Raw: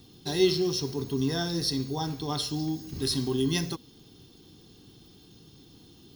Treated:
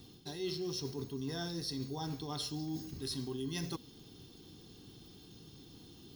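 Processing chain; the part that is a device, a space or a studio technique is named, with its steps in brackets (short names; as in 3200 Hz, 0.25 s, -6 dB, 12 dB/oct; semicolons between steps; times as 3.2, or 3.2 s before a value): compression on the reversed sound (reverse; compressor 6:1, threshold -35 dBFS, peak gain reduction 16.5 dB; reverse); gain -1.5 dB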